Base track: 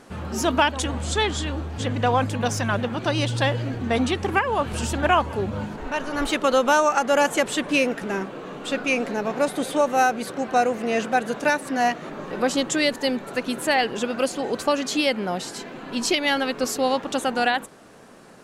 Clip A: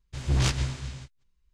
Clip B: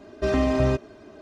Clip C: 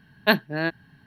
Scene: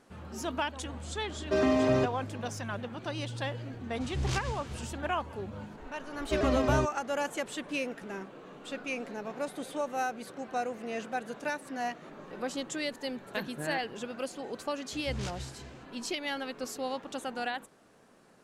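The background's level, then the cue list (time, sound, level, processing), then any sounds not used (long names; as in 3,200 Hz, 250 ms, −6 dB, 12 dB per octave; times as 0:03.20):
base track −13 dB
0:01.29: mix in B −2.5 dB + high-pass filter 160 Hz
0:03.87: mix in A −8.5 dB
0:06.09: mix in B −6 dB + pitch modulation by a square or saw wave saw down 6.3 Hz, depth 100 cents
0:13.08: mix in C −5.5 dB + downward compressor 5 to 1, threshold −26 dBFS
0:14.79: mix in A −13.5 dB + high-pass filter 41 Hz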